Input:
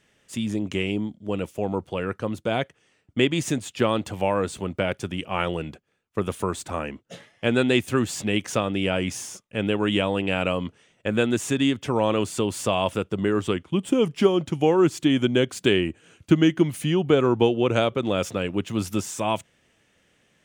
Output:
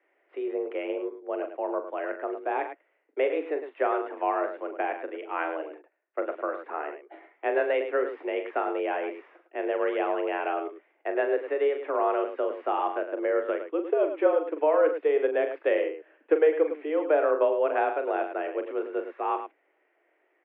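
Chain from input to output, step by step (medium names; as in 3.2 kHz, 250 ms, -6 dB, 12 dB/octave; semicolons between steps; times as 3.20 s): multi-tap echo 41/105 ms -8.5/-9.5 dB; mistuned SSB +150 Hz 180–2100 Hz; trim -4 dB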